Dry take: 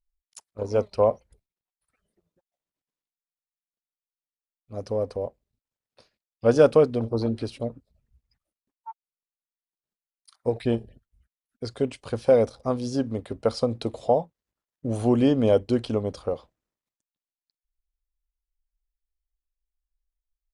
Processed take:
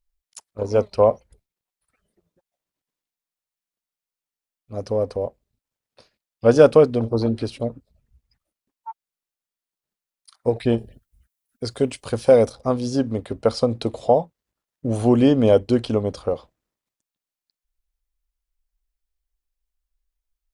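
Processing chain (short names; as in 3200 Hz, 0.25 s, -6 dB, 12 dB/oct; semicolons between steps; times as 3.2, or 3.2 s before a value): 10.78–12.53 high shelf 7500 Hz +11 dB; gain +4.5 dB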